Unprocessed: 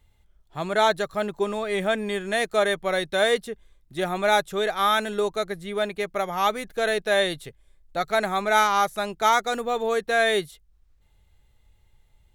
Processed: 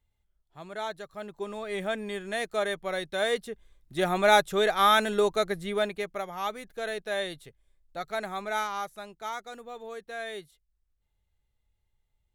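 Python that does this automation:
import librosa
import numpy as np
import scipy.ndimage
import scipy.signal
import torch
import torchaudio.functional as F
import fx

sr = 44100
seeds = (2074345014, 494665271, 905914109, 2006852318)

y = fx.gain(x, sr, db=fx.line((1.06, -14.5), (1.71, -7.0), (3.17, -7.0), (4.11, 0.5), (5.67, 0.5), (6.32, -9.5), (8.44, -9.5), (9.24, -16.0)))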